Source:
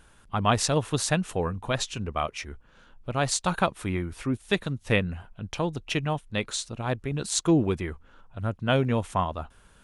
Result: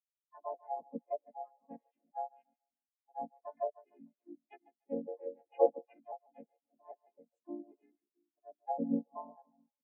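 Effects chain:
vocoder with an arpeggio as carrier major triad, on A#3, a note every 266 ms
phaser with its sweep stopped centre 1,200 Hz, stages 6
echo with a time of its own for lows and highs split 400 Hz, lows 335 ms, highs 145 ms, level −10 dB
pitch-shifted copies added −7 semitones −18 dB, −5 semitones −6 dB, +3 semitones 0 dB
gain on a spectral selection 0:05.08–0:05.94, 300–3,100 Hz +10 dB
treble cut that deepens with the level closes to 780 Hz, closed at −22.5 dBFS
every bin expanded away from the loudest bin 2.5 to 1
level −2.5 dB

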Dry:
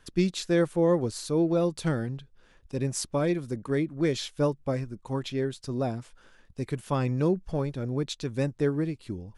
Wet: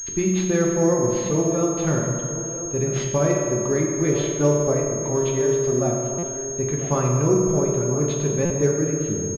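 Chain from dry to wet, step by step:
in parallel at 0 dB: downward compressor, threshold −34 dBFS, peak gain reduction 14.5 dB
on the sum: pitch vibrato 4.6 Hz 11 cents
slap from a distant wall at 170 metres, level −12 dB
convolution reverb RT60 2.4 s, pre-delay 3 ms, DRR −2 dB
buffer that repeats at 0:06.18/0:08.45, samples 256, times 8
switching amplifier with a slow clock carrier 6,500 Hz

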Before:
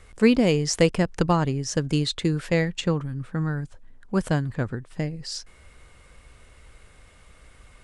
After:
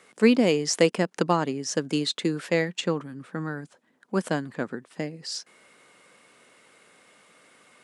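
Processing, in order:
high-pass filter 200 Hz 24 dB per octave

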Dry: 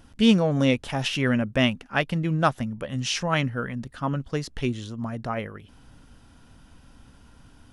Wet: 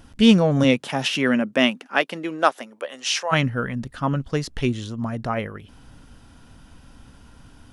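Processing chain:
0:00.63–0:03.31: high-pass filter 130 Hz → 510 Hz 24 dB per octave
level +4 dB

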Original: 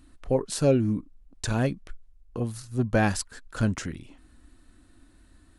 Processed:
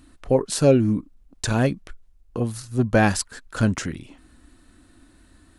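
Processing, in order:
low-shelf EQ 60 Hz −7 dB
level +5.5 dB

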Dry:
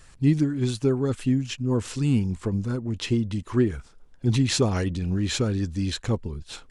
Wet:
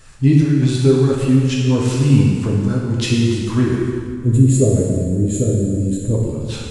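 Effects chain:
0:02.81–0:03.50: high-shelf EQ 6,500 Hz +8.5 dB
0:03.79–0:06.15: gain on a spectral selection 670–6,600 Hz −22 dB
dense smooth reverb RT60 2 s, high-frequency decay 0.85×, DRR −3.5 dB
level +4 dB

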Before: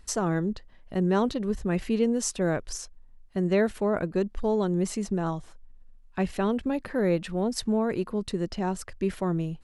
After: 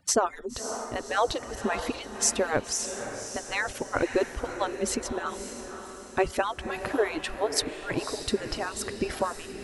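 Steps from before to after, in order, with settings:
harmonic-percussive split with one part muted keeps percussive
feedback delay with all-pass diffusion 562 ms, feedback 47%, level −8.5 dB
level +6.5 dB

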